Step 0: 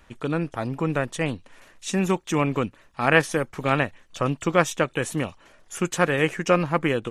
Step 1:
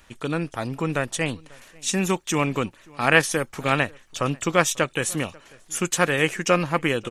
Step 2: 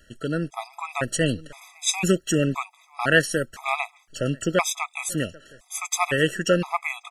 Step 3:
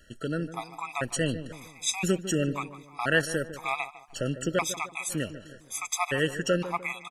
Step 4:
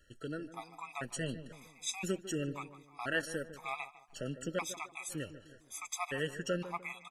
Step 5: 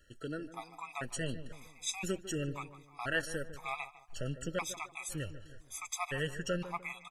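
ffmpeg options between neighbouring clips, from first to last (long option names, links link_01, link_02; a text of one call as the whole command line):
ffmpeg -i in.wav -filter_complex "[0:a]highshelf=frequency=2700:gain=9.5,asplit=2[link_01][link_02];[link_02]adelay=542.3,volume=-25dB,highshelf=frequency=4000:gain=-12.2[link_03];[link_01][link_03]amix=inputs=2:normalize=0,volume=-1dB" out.wav
ffmpeg -i in.wav -af "dynaudnorm=framelen=330:gausssize=7:maxgain=8.5dB,afftfilt=real='re*gt(sin(2*PI*0.98*pts/sr)*(1-2*mod(floor(b*sr/1024/660),2)),0)':imag='im*gt(sin(2*PI*0.98*pts/sr)*(1-2*mod(floor(b*sr/1024/660),2)),0)':win_size=1024:overlap=0.75" out.wav
ffmpeg -i in.wav -filter_complex "[0:a]asplit=2[link_01][link_02];[link_02]acompressor=threshold=-31dB:ratio=6,volume=-1.5dB[link_03];[link_01][link_03]amix=inputs=2:normalize=0,asplit=2[link_04][link_05];[link_05]adelay=151,lowpass=frequency=1200:poles=1,volume=-12dB,asplit=2[link_06][link_07];[link_07]adelay=151,lowpass=frequency=1200:poles=1,volume=0.44,asplit=2[link_08][link_09];[link_09]adelay=151,lowpass=frequency=1200:poles=1,volume=0.44,asplit=2[link_10][link_11];[link_11]adelay=151,lowpass=frequency=1200:poles=1,volume=0.44[link_12];[link_04][link_06][link_08][link_10][link_12]amix=inputs=5:normalize=0,volume=-7dB" out.wav
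ffmpeg -i in.wav -af "flanger=delay=2.3:depth=2.7:regen=-55:speed=0.38:shape=sinusoidal,volume=-5.5dB" out.wav
ffmpeg -i in.wav -af "asubboost=boost=6.5:cutoff=93,volume=1dB" out.wav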